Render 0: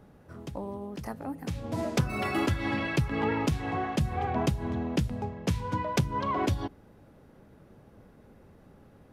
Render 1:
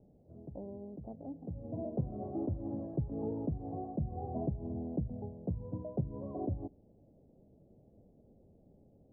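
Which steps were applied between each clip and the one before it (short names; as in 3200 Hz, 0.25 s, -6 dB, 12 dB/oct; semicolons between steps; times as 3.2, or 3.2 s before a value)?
elliptic low-pass 690 Hz, stop band 80 dB; gain -7 dB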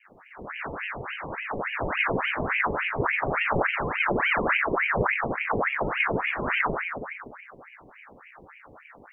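reverb RT60 1.2 s, pre-delay 9 ms, DRR -9.5 dB; ring modulator with a swept carrier 1300 Hz, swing 80%, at 3.5 Hz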